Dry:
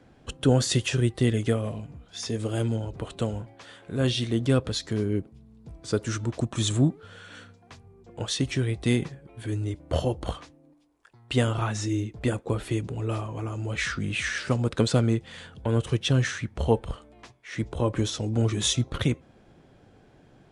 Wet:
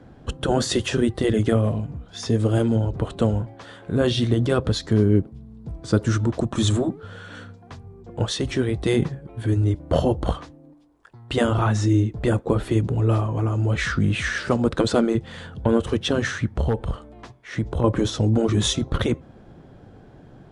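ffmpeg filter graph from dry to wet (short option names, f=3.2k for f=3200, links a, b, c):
-filter_complex "[0:a]asettb=1/sr,asplit=3[a][b][c];[a]atrim=end=16.604[d];[b]atrim=start=16.6:end=17.84,asetpts=PTS-STARTPTS,afade=t=in:d=0.004:c=qsin,afade=t=out:st=1.236:d=0.004:c=qsin,aeval=exprs='0.224*(abs(mod(val(0)/0.224+3,4)-2)-1)':c=same,acompressor=threshold=-29dB:ratio=3:attack=3.2:release=140:knee=1:detection=peak[e];[c]atrim=start=17.836[f];[d][e]acrossfade=d=0.004:c1=hsin:c2=qsin[g];[g][f]acrossfade=d=0.004:c1=qsin:c2=hsin,bass=f=250:g=3,treble=f=4k:g=-8,afftfilt=real='re*lt(hypot(re,im),0.631)':imag='im*lt(hypot(re,im),0.631)':win_size=1024:overlap=0.75,equalizer=f=2.4k:t=o:w=0.79:g=-6.5,volume=7.5dB"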